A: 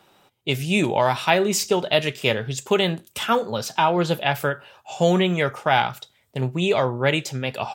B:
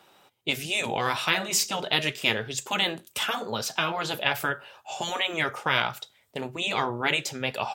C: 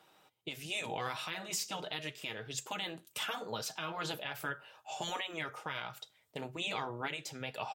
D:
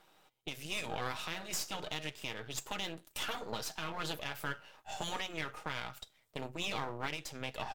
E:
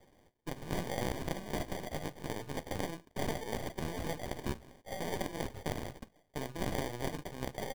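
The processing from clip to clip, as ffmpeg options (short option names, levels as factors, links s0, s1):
-af "afftfilt=real='re*lt(hypot(re,im),0.447)':imag='im*lt(hypot(re,im),0.447)':win_size=1024:overlap=0.75,lowshelf=f=260:g=-8"
-af "aecho=1:1:6.4:0.31,alimiter=limit=0.126:level=0:latency=1:release=299,volume=0.422"
-af "aeval=exprs='if(lt(val(0),0),0.251*val(0),val(0))':c=same,volume=1.33"
-af "acrusher=samples=33:mix=1:aa=0.000001,volume=1.26"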